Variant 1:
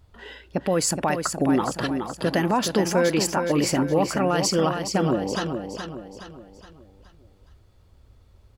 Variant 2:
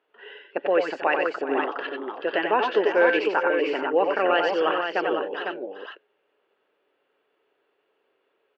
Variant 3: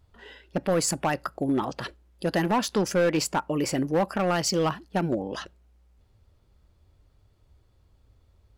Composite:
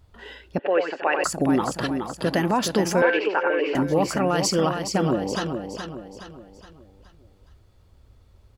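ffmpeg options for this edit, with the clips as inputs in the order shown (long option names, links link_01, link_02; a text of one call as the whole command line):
ffmpeg -i take0.wav -i take1.wav -filter_complex "[1:a]asplit=2[link_01][link_02];[0:a]asplit=3[link_03][link_04][link_05];[link_03]atrim=end=0.592[link_06];[link_01]atrim=start=0.588:end=1.242[link_07];[link_04]atrim=start=1.238:end=3.022[link_08];[link_02]atrim=start=3.018:end=3.752[link_09];[link_05]atrim=start=3.748[link_10];[link_06][link_07]acrossfade=duration=0.004:curve1=hsin:curve2=hsin[link_11];[link_11][link_08]acrossfade=duration=0.004:curve1=hsin:curve2=hsin[link_12];[link_12][link_09]acrossfade=duration=0.004:curve1=hsin:curve2=hsin[link_13];[link_13][link_10]acrossfade=duration=0.004:curve1=hsin:curve2=hsin" out.wav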